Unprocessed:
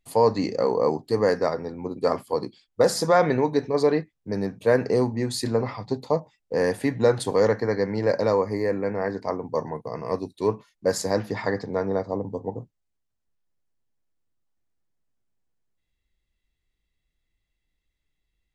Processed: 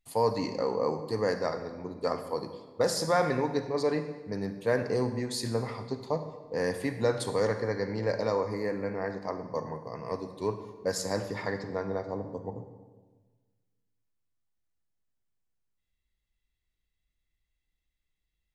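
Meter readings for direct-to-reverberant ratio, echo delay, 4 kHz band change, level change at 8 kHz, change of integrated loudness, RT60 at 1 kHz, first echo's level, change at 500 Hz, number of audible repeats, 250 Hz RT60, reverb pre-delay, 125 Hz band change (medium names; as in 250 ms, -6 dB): 9.0 dB, no echo, -3.5 dB, -4.0 dB, -6.5 dB, 1.3 s, no echo, -7.0 dB, no echo, 1.6 s, 39 ms, -5.5 dB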